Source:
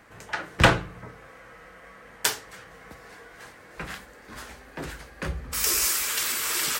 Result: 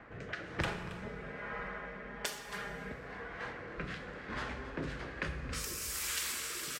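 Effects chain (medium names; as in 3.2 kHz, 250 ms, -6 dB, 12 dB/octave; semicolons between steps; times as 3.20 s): level-controlled noise filter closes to 2.2 kHz, open at -23 dBFS; 0.67–2.92 s: comb 4.9 ms, depth 98%; compression 16:1, threshold -37 dBFS, peak gain reduction 26.5 dB; rotary cabinet horn 1.1 Hz; delay 274 ms -15 dB; plate-style reverb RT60 2.6 s, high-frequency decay 0.6×, DRR 6.5 dB; trim +4.5 dB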